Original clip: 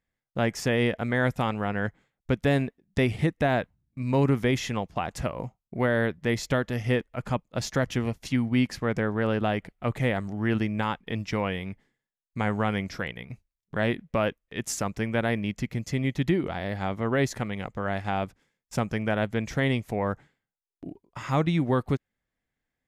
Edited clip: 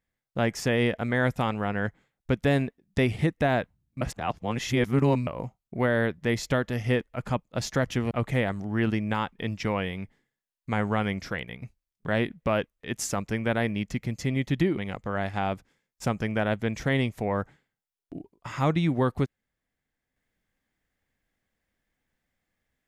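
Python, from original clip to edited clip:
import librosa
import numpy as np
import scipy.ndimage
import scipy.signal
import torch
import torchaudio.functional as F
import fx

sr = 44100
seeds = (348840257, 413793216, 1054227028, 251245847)

y = fx.edit(x, sr, fx.reverse_span(start_s=4.01, length_s=1.26),
    fx.cut(start_s=8.11, length_s=1.68),
    fx.cut(start_s=16.45, length_s=1.03), tone=tone)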